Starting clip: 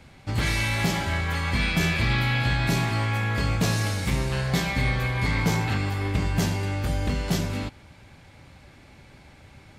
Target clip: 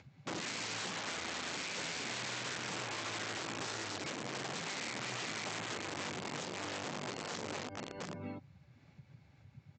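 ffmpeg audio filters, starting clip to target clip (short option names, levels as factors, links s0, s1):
-filter_complex "[0:a]afftdn=nr=23:nf=-35,asplit=2[s0][s1];[s1]adelay=699.7,volume=0.316,highshelf=f=4000:g=-15.7[s2];[s0][s2]amix=inputs=2:normalize=0,asplit=2[s3][s4];[s4]volume=22.4,asoftclip=hard,volume=0.0447,volume=0.631[s5];[s3][s5]amix=inputs=2:normalize=0,bandreject=f=3200:w=22,acompressor=threshold=0.0447:ratio=10,aresample=16000,aeval=exprs='(mod(21.1*val(0)+1,2)-1)/21.1':c=same,aresample=44100,adynamicequalizer=threshold=0.00562:dfrequency=160:dqfactor=0.83:tfrequency=160:tqfactor=0.83:attack=5:release=100:ratio=0.375:range=1.5:mode=cutabove:tftype=bell,alimiter=level_in=2.37:limit=0.0631:level=0:latency=1:release=86,volume=0.422,acompressor=mode=upward:threshold=0.00501:ratio=2.5,highpass=f=120:w=0.5412,highpass=f=120:w=1.3066,volume=0.891"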